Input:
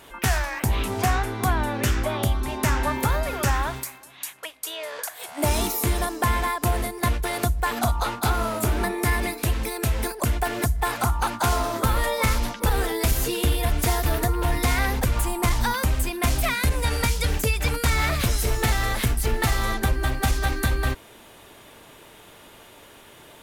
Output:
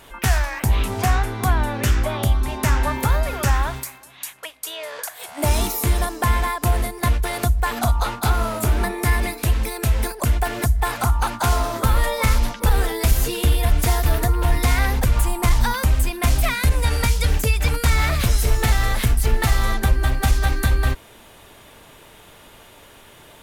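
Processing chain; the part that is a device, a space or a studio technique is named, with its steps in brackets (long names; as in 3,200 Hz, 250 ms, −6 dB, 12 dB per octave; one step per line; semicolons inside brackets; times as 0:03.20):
low shelf boost with a cut just above (low-shelf EQ 72 Hz +7.5 dB; parametric band 330 Hz −2.5 dB 0.77 octaves)
level +1.5 dB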